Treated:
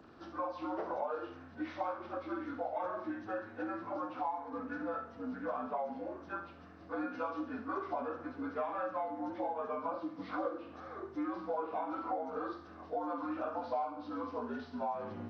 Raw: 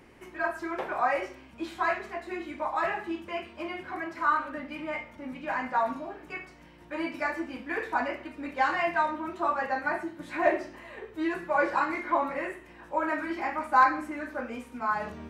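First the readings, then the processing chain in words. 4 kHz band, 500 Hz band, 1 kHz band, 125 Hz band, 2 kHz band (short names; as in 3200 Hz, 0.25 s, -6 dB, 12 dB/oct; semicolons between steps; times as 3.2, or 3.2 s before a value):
-14.0 dB, -6.0 dB, -10.0 dB, -3.5 dB, -17.0 dB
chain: inharmonic rescaling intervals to 78%; compressor 6:1, threshold -34 dBFS, peak gain reduction 16.5 dB; thin delay 67 ms, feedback 52%, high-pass 4400 Hz, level -6 dB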